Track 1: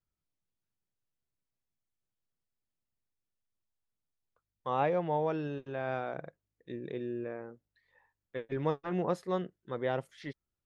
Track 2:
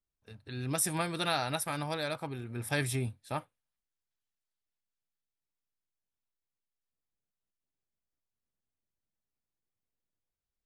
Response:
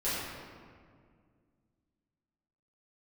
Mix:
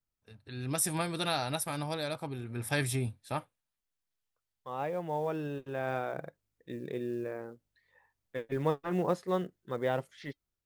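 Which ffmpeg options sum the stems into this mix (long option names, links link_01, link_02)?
-filter_complex "[0:a]acrusher=bits=8:mode=log:mix=0:aa=0.000001,flanger=delay=1.2:depth=1.2:regen=-89:speed=0.6:shape=triangular,volume=1dB[link_01];[1:a]adynamicequalizer=threshold=0.00398:dfrequency=1700:dqfactor=0.85:tfrequency=1700:tqfactor=0.85:attack=5:release=100:ratio=0.375:range=2.5:mode=cutabove:tftype=bell,acontrast=60,volume=-10.5dB,asplit=2[link_02][link_03];[link_03]apad=whole_len=469928[link_04];[link_01][link_04]sidechaincompress=threshold=-59dB:ratio=5:attack=16:release=1380[link_05];[link_05][link_02]amix=inputs=2:normalize=0,dynaudnorm=framelen=240:gausssize=5:maxgain=5dB"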